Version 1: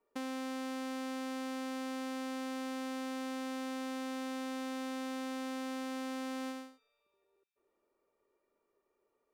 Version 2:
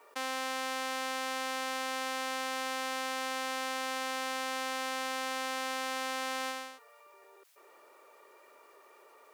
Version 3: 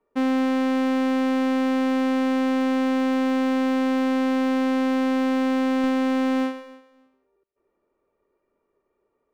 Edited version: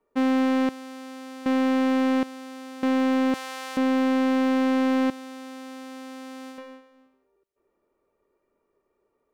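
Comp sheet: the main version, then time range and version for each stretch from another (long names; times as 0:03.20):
3
0:00.69–0:01.46: punch in from 1
0:02.23–0:02.83: punch in from 1
0:03.34–0:03.77: punch in from 2
0:05.10–0:06.58: punch in from 1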